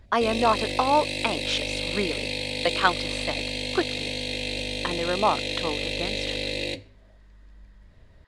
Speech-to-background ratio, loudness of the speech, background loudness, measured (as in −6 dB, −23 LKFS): 1.0 dB, −27.5 LKFS, −28.5 LKFS